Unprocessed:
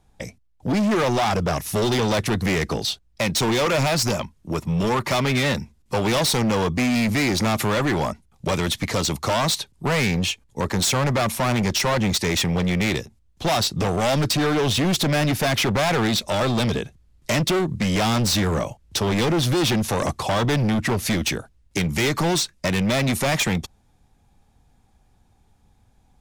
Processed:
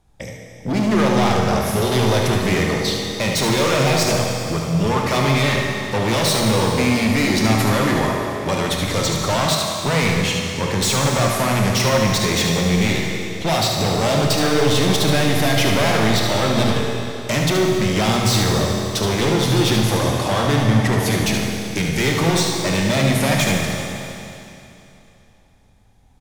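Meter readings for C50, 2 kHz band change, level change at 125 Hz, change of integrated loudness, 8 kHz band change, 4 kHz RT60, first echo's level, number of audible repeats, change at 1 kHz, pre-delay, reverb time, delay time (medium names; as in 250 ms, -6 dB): -0.5 dB, +3.5 dB, +4.5 dB, +3.5 dB, +3.5 dB, 2.8 s, -7.0 dB, 1, +3.5 dB, 24 ms, 2.9 s, 73 ms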